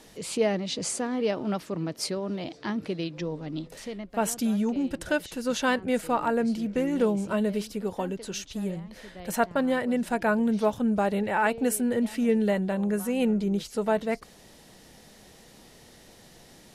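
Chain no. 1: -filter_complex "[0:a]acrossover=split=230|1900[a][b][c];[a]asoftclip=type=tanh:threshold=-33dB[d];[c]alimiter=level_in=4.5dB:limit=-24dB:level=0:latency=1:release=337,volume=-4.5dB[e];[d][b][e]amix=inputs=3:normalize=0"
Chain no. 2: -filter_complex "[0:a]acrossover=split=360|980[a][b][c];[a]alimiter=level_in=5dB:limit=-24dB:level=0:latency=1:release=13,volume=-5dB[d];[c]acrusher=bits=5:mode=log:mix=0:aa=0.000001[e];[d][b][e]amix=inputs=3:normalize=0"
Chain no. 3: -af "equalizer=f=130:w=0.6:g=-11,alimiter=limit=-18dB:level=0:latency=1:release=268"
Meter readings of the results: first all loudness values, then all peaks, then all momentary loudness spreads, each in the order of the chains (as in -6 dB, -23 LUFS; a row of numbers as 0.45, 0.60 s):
-29.0, -29.5, -32.5 LUFS; -10.5, -12.0, -18.0 dBFS; 9, 8, 8 LU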